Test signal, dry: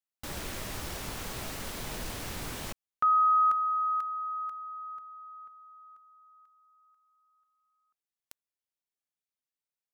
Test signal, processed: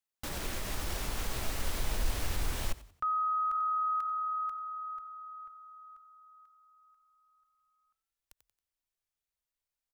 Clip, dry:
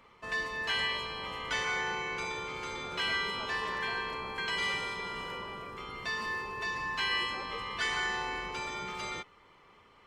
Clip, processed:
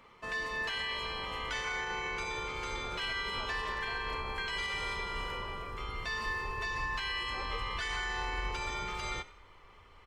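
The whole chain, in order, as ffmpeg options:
ffmpeg -i in.wav -filter_complex "[0:a]asplit=4[link_01][link_02][link_03][link_04];[link_02]adelay=91,afreqshift=38,volume=-19dB[link_05];[link_03]adelay=182,afreqshift=76,volume=-27.9dB[link_06];[link_04]adelay=273,afreqshift=114,volume=-36.7dB[link_07];[link_01][link_05][link_06][link_07]amix=inputs=4:normalize=0,alimiter=level_in=4dB:limit=-24dB:level=0:latency=1:release=70,volume=-4dB,asubboost=boost=7.5:cutoff=68,volume=1dB" out.wav

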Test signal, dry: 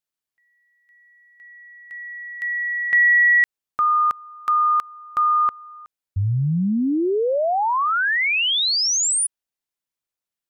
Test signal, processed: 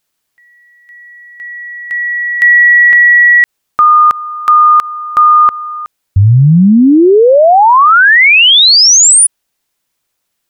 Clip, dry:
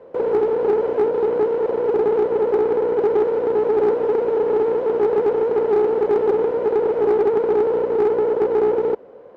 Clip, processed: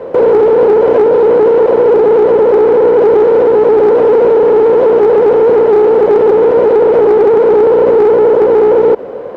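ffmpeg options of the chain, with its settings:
ffmpeg -i in.wav -af "alimiter=level_in=20.5dB:limit=-1dB:release=50:level=0:latency=1,volume=-1dB" out.wav

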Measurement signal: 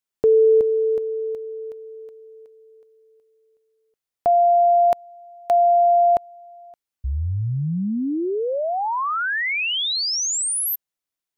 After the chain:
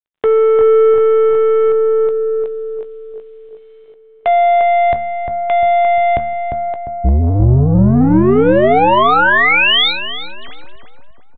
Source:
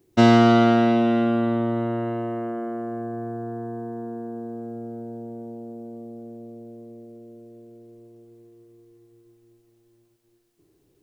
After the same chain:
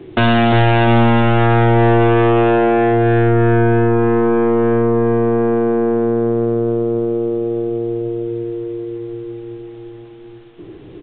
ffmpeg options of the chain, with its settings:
ffmpeg -i in.wav -filter_complex "[0:a]bandreject=frequency=75.9:width_type=h:width=4,bandreject=frequency=151.8:width_type=h:width=4,bandreject=frequency=227.7:width_type=h:width=4,acrossover=split=110[link_01][link_02];[link_02]acompressor=threshold=-26dB:ratio=6:attack=0.15:release=26:knee=6[link_03];[link_01][link_03]amix=inputs=2:normalize=0,apsyclip=31dB,aeval=exprs='(tanh(2*val(0)+0.1)-tanh(0.1))/2':channel_layout=same,aeval=exprs='val(0)*gte(abs(val(0)),0.00531)':channel_layout=same,asplit=2[link_04][link_05];[link_05]adelay=16,volume=-13dB[link_06];[link_04][link_06]amix=inputs=2:normalize=0,asplit=2[link_07][link_08];[link_08]adelay=350,lowpass=frequency=1100:poles=1,volume=-3.5dB,asplit=2[link_09][link_10];[link_10]adelay=350,lowpass=frequency=1100:poles=1,volume=0.52,asplit=2[link_11][link_12];[link_12]adelay=350,lowpass=frequency=1100:poles=1,volume=0.52,asplit=2[link_13][link_14];[link_14]adelay=350,lowpass=frequency=1100:poles=1,volume=0.52,asplit=2[link_15][link_16];[link_16]adelay=350,lowpass=frequency=1100:poles=1,volume=0.52,asplit=2[link_17][link_18];[link_18]adelay=350,lowpass=frequency=1100:poles=1,volume=0.52,asplit=2[link_19][link_20];[link_20]adelay=350,lowpass=frequency=1100:poles=1,volume=0.52[link_21];[link_09][link_11][link_13][link_15][link_17][link_19][link_21]amix=inputs=7:normalize=0[link_22];[link_07][link_22]amix=inputs=2:normalize=0,aresample=8000,aresample=44100,volume=-4dB" out.wav

